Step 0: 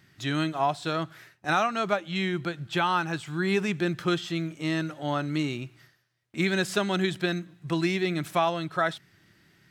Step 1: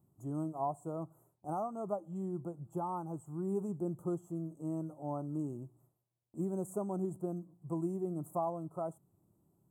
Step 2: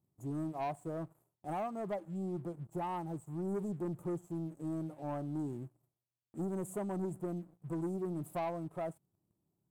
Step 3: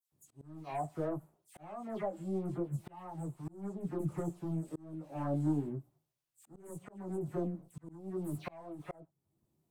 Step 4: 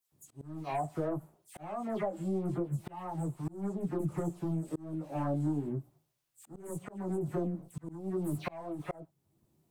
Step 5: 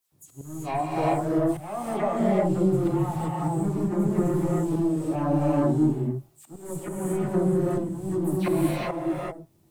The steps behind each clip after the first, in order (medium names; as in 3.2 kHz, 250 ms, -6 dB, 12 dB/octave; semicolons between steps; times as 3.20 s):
inverse Chebyshev band-stop 1.6–5.3 kHz, stop band 40 dB; trim -9 dB
waveshaping leveller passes 2; trim -6 dB
phase dispersion lows, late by 121 ms, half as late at 2.5 kHz; chorus voices 6, 0.57 Hz, delay 17 ms, depth 4.5 ms; slow attack 596 ms; trim +7 dB
compression 3:1, threshold -37 dBFS, peak gain reduction 8 dB; trim +6.5 dB
gated-style reverb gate 420 ms rising, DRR -4.5 dB; trim +5.5 dB